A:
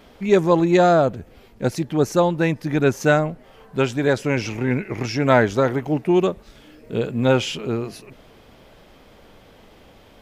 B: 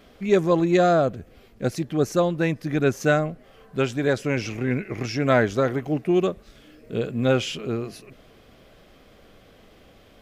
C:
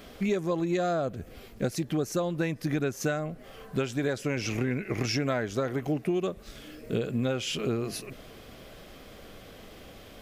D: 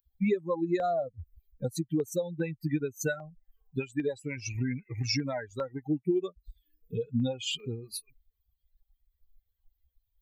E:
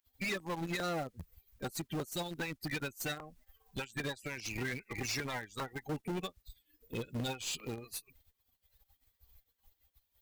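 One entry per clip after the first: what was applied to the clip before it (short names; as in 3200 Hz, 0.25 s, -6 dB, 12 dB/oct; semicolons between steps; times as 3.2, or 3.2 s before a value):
notch 900 Hz, Q 5.4; gain -3 dB
high shelf 5800 Hz +6.5 dB; compressor 10:1, threshold -29 dBFS, peak gain reduction 16 dB; gain +4 dB
per-bin expansion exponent 3; LFO notch saw down 2.5 Hz 660–2100 Hz; gain +5 dB
spectral limiter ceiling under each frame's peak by 27 dB; tube stage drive 34 dB, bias 0.2; in parallel at -9 dB: bit-crush 6-bit; on the sum: gain -2.5 dB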